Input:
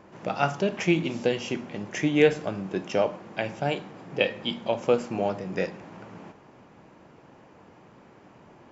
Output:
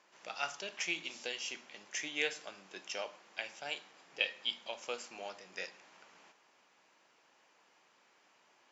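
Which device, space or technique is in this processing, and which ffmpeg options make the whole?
piezo pickup straight into a mixer: -af "highpass=f=190:p=1,lowpass=6500,aderivative,volume=1.5"

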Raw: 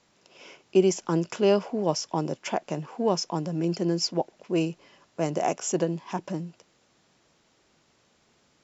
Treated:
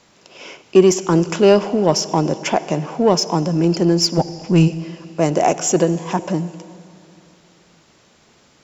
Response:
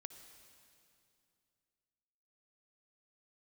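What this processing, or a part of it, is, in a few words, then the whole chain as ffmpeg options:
saturated reverb return: -filter_complex "[0:a]asplit=3[s0][s1][s2];[s0]afade=t=out:st=4.17:d=0.02[s3];[s1]asubboost=boost=9.5:cutoff=140,afade=t=in:st=4.17:d=0.02,afade=t=out:st=4.67:d=0.02[s4];[s2]afade=t=in:st=4.67:d=0.02[s5];[s3][s4][s5]amix=inputs=3:normalize=0,asplit=2[s6][s7];[1:a]atrim=start_sample=2205[s8];[s7][s8]afir=irnorm=-1:irlink=0,asoftclip=type=tanh:threshold=0.0422,volume=1.33[s9];[s6][s9]amix=inputs=2:normalize=0,volume=2.24"

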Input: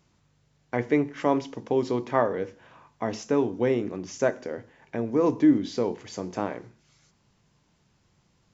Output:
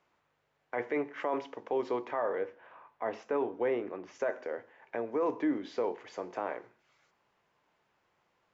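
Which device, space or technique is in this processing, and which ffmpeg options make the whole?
DJ mixer with the lows and highs turned down: -filter_complex "[0:a]asettb=1/sr,asplit=3[s0][s1][s2];[s0]atrim=end=2.384[s3];[s1]atrim=start=2.38:end=4.15,asetpts=PTS-STARTPTS,afade=t=in:d=0.004:c=qsin,afade=t=out:st=1.766:d=0.004:c=qsin,aemphasis=mode=reproduction:type=50fm[s4];[s2]atrim=start=4.146[s5];[s3][s4]acrossfade=d=0.004:c1=hsin:c2=qsin[s6];[s6][s5]acrossfade=d=0.004:c1=qsin:c2=hsin,acrossover=split=400 2800:gain=0.0891 1 0.141[s7][s8][s9];[s7][s8][s9]amix=inputs=3:normalize=0,alimiter=limit=0.075:level=0:latency=1:release=12"

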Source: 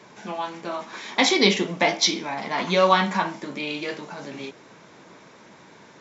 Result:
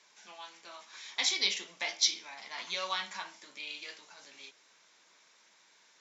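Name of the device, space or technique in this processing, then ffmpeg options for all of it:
piezo pickup straight into a mixer: -af "lowpass=6900,aderivative,volume=0.841"

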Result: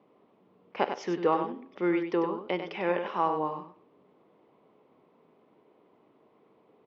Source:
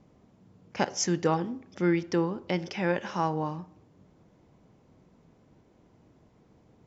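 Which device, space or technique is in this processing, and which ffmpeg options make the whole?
phone earpiece: -af "highpass=330,equalizer=f=420:t=q:w=4:g=5,equalizer=f=1100:t=q:w=4:g=5,equalizer=f=1600:t=q:w=4:g=-6,lowpass=f=3400:w=0.5412,lowpass=f=3400:w=1.3066,aecho=1:1:97:0.422"

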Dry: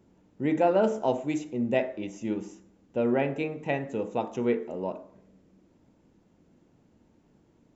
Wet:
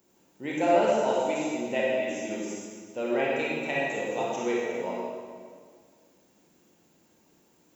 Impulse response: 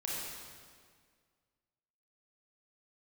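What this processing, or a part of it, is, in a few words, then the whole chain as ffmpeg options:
stairwell: -filter_complex "[0:a]asettb=1/sr,asplit=3[s0][s1][s2];[s0]atrim=end=0.684[s3];[s1]atrim=start=0.68:end=2.35,asetpts=PTS-STARTPTS,afade=t=in:d=0.004:c=qsin,afade=t=out:st=1.666:d=0.004:c=qsin,acrossover=split=3600[s4][s5];[s5]acompressor=threshold=0.00178:ratio=4:attack=1:release=60[s6];[s4][s6]amix=inputs=2:normalize=0[s7];[s2]atrim=start=2.346[s8];[s3][s7]acrossfade=d=0.004:c1=hsin:c2=qsin[s9];[s9][s8]acrossfade=d=0.004:c1=qsin:c2=hsin,aemphasis=mode=production:type=riaa[s10];[1:a]atrim=start_sample=2205[s11];[s10][s11]afir=irnorm=-1:irlink=0"

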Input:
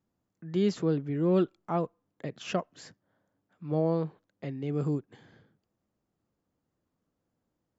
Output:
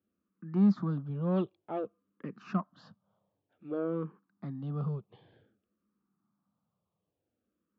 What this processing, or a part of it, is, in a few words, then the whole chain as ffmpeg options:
barber-pole phaser into a guitar amplifier: -filter_complex "[0:a]asplit=2[s0][s1];[s1]afreqshift=-0.54[s2];[s0][s2]amix=inputs=2:normalize=1,asoftclip=type=tanh:threshold=0.0596,highpass=79,equalizer=f=200:t=q:w=4:g=10,equalizer=f=1200:t=q:w=4:g=9,equalizer=f=2000:t=q:w=4:g=-8,lowpass=f=3700:w=0.5412,lowpass=f=3700:w=1.3066,volume=0.841"

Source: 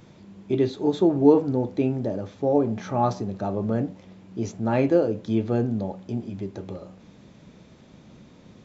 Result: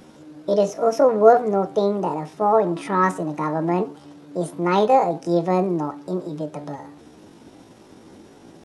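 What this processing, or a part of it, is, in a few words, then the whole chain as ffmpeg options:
chipmunk voice: -af "asetrate=68011,aresample=44100,atempo=0.64842,volume=1.5"

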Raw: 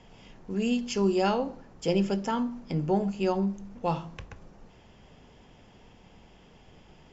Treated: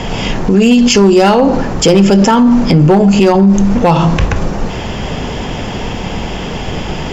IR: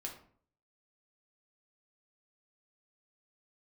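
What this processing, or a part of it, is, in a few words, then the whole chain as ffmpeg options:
loud club master: -af "acompressor=threshold=0.0251:ratio=2,asoftclip=type=hard:threshold=0.0501,alimiter=level_in=63.1:limit=0.891:release=50:level=0:latency=1,volume=0.891"

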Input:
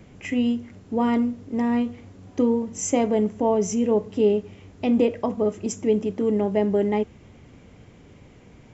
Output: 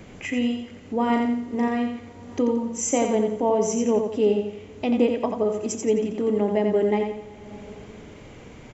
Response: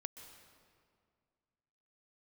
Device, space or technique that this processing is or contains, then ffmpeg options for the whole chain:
ducked reverb: -filter_complex "[0:a]equalizer=f=98:w=0.39:g=-5.5,asettb=1/sr,asplit=3[s0][s1][s2];[s0]atrim=end=1.064[s3];[s1]atrim=start=1.06:end=1.68,asetpts=PTS-STARTPTS,afade=t=in:d=0.004:c=qsin,afade=t=out:st=0.616:d=0.004:c=qsin,asplit=2[s4][s5];[s5]adelay=38,volume=0.596[s6];[s4][s6]amix=inputs=2:normalize=0,atrim=end_sample=27342[s7];[s2]atrim=start=1.676[s8];[s3][s7]acrossfade=d=0.004:c1=hsin:c2=qsin[s9];[s9][s8]acrossfade=d=0.004:c1=qsin:c2=hsin,bandreject=f=5300:w=24,aecho=1:1:87|174|261|348|435:0.531|0.202|0.0767|0.0291|0.0111,asplit=3[s10][s11][s12];[1:a]atrim=start_sample=2205[s13];[s11][s13]afir=irnorm=-1:irlink=0[s14];[s12]apad=whole_len=404348[s15];[s14][s15]sidechaincompress=threshold=0.00562:ratio=8:attack=16:release=365,volume=2.11[s16];[s10][s16]amix=inputs=2:normalize=0"

